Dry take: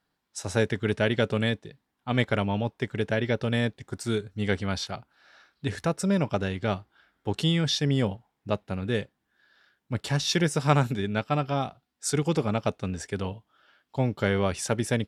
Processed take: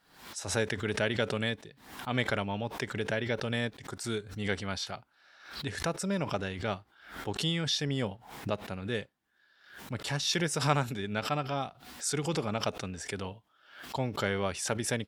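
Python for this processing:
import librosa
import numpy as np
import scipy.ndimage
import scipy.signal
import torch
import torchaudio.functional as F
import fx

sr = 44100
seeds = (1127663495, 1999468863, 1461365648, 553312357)

y = fx.low_shelf(x, sr, hz=490.0, db=-6.0)
y = fx.pre_swell(y, sr, db_per_s=92.0)
y = F.gain(torch.from_numpy(y), -3.0).numpy()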